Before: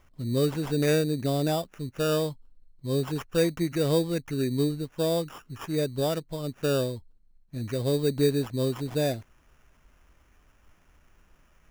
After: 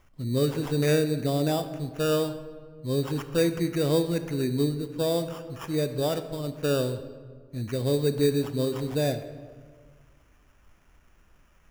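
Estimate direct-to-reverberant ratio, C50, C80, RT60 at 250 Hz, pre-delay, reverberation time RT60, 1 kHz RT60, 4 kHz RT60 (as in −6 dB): 9.5 dB, 11.0 dB, 12.5 dB, 1.9 s, 21 ms, 1.6 s, 1.5 s, 0.95 s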